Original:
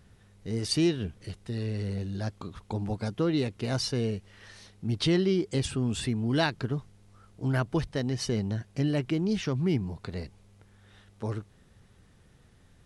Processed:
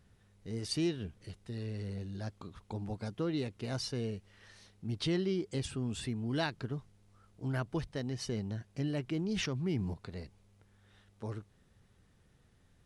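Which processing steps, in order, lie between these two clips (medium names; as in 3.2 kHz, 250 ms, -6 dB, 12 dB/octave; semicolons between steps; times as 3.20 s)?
9.06–9.94 s: decay stretcher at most 29 dB/s; trim -7.5 dB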